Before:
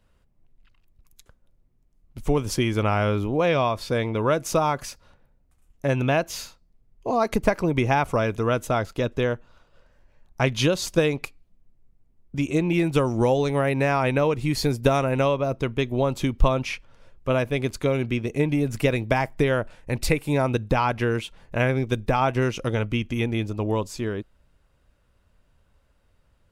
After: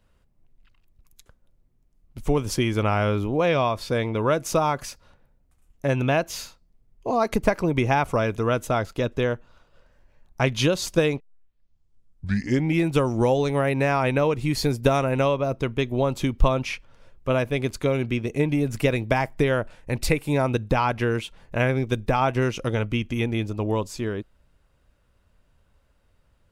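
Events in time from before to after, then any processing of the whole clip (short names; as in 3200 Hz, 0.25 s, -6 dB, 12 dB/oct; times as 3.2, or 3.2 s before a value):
11.2 tape start 1.62 s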